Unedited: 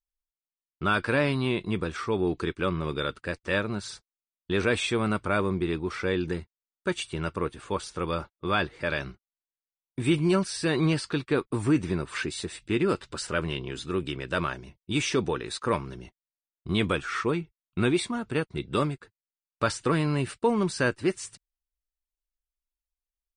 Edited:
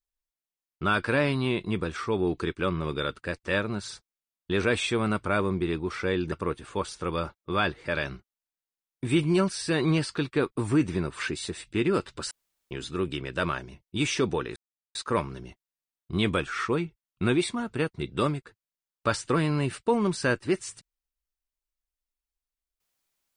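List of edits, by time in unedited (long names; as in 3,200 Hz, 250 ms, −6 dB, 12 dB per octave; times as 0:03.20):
0:06.32–0:07.27: remove
0:13.26–0:13.66: fill with room tone
0:15.51: splice in silence 0.39 s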